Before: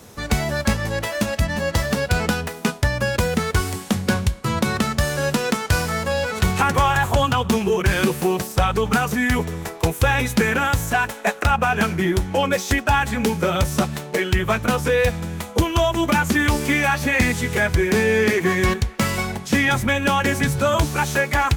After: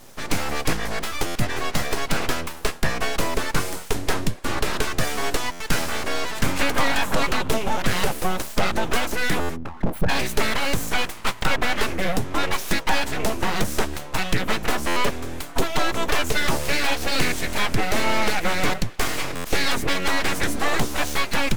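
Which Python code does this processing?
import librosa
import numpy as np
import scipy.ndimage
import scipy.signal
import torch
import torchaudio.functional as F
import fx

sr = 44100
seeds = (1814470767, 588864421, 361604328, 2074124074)

y = fx.envelope_sharpen(x, sr, power=3.0, at=(9.55, 10.08), fade=0.02)
y = np.abs(y)
y = fx.buffer_glitch(y, sr, at_s=(1.26, 5.51, 9.4, 14.87, 19.35), block=512, repeats=7)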